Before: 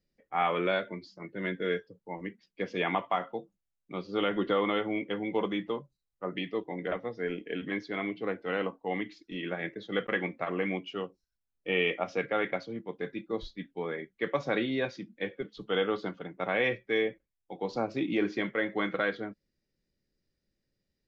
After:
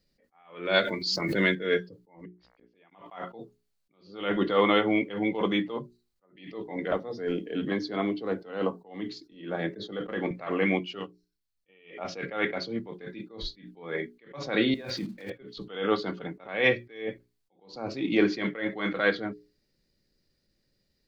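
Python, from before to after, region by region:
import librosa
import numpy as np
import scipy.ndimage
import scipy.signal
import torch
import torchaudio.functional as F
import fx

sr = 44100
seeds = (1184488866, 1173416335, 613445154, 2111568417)

y = fx.chain(x, sr, fx.high_shelf(hz=3200.0, db=11.0),
    fx.pre_swell(db_per_s=31.0), at=(0.74, 1.55))
y = fx.lowpass(y, sr, hz=2900.0, slope=6, at=(2.24, 2.91), fade=0.02)
y = fx.dmg_buzz(y, sr, base_hz=60.0, harmonics=37, level_db=-68.0, tilt_db=-4, odd_only=False, at=(2.24, 2.91), fade=0.02)
y = fx.gate_flip(y, sr, shuts_db=-36.0, range_db=-38, at=(2.24, 2.91), fade=0.02)
y = fx.chain(y, sr, fx.peak_eq(hz=2200.0, db=-11.0, octaves=0.89),
    fx.band_squash(depth_pct=40), at=(6.91, 10.31))
y = fx.chain(y, sr, fx.peak_eq(hz=450.0, db=-9.5, octaves=2.2),
    fx.upward_expand(threshold_db=-51.0, expansion=1.5), at=(10.99, 11.69))
y = fx.chain(y, sr, fx.block_float(bits=5),
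    fx.high_shelf(hz=5200.0, db=-10.0),
    fx.over_compress(threshold_db=-43.0, ratio=-1.0), at=(14.74, 15.32))
y = fx.peak_eq(y, sr, hz=4400.0, db=8.0, octaves=0.32)
y = fx.hum_notches(y, sr, base_hz=60, count=7)
y = fx.attack_slew(y, sr, db_per_s=120.0)
y = F.gain(torch.from_numpy(y), 7.5).numpy()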